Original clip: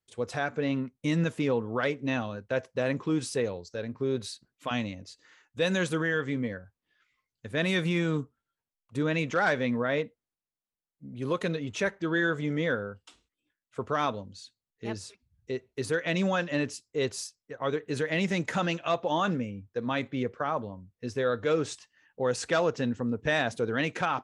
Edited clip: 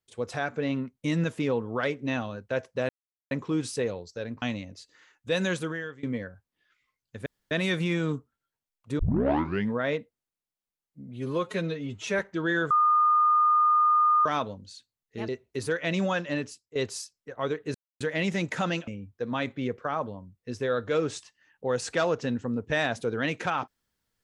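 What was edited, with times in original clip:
0:02.89: splice in silence 0.42 s
0:04.00–0:04.72: remove
0:05.78–0:06.33: fade out, to −21.5 dB
0:07.56: splice in room tone 0.25 s
0:09.04: tape start 0.75 s
0:11.12–0:11.87: time-stretch 1.5×
0:12.38–0:13.93: beep over 1,220 Hz −18 dBFS
0:14.96–0:15.51: remove
0:16.32–0:16.98: fade out equal-power, to −15 dB
0:17.97: splice in silence 0.26 s
0:18.84–0:19.43: remove

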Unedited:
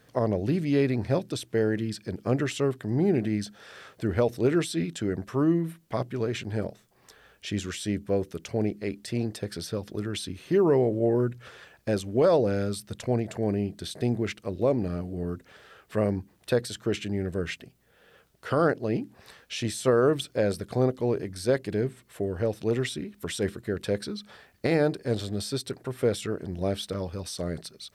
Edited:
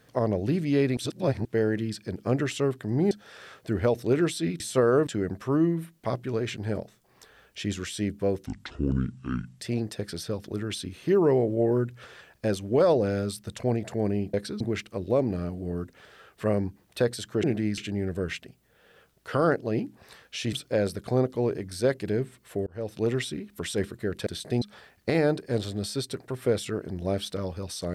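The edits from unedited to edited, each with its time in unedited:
0:00.97–0:01.45: reverse
0:03.11–0:03.45: move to 0:16.95
0:08.33–0:09.04: play speed 62%
0:13.77–0:14.12: swap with 0:23.91–0:24.18
0:19.70–0:20.17: move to 0:04.94
0:22.31–0:22.63: fade in

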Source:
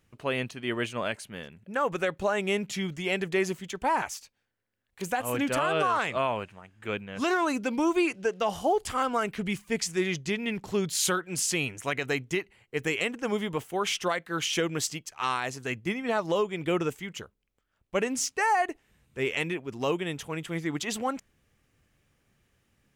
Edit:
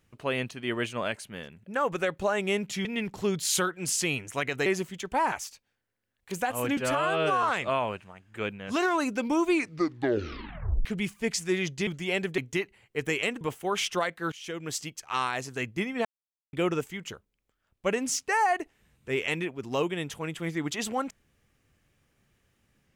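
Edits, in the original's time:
0:02.85–0:03.36: swap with 0:10.35–0:12.16
0:05.47–0:05.91: time-stretch 1.5×
0:07.99: tape stop 1.34 s
0:13.19–0:13.50: remove
0:14.41–0:15.07: fade in, from −22.5 dB
0:16.14–0:16.62: silence

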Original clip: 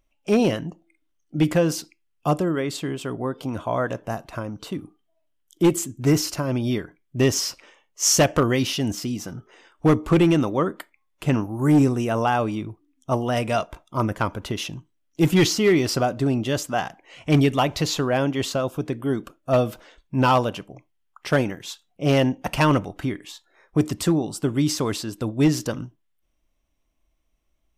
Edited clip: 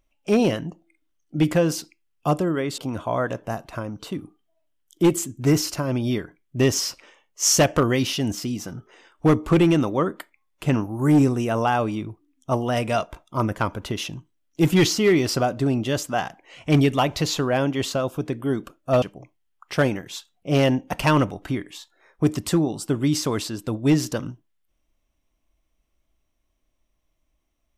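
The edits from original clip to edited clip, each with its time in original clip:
0:02.78–0:03.38: remove
0:19.62–0:20.56: remove

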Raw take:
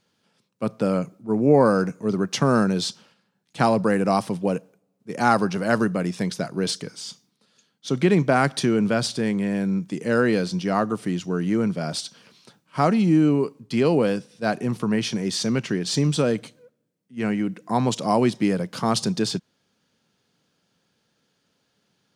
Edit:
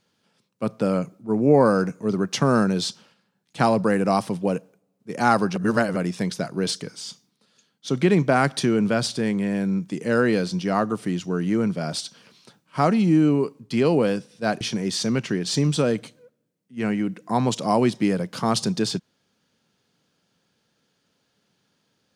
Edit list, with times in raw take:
0:05.56–0:05.96: reverse
0:14.61–0:15.01: remove

